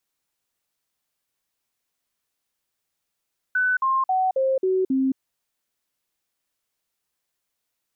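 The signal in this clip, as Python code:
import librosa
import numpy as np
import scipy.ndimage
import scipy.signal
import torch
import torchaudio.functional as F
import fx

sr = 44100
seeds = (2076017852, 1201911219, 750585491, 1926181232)

y = fx.stepped_sweep(sr, from_hz=1500.0, direction='down', per_octave=2, tones=6, dwell_s=0.22, gap_s=0.05, level_db=-18.0)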